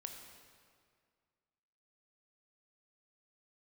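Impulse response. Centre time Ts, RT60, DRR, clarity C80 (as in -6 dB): 51 ms, 2.0 s, 3.5 dB, 6.0 dB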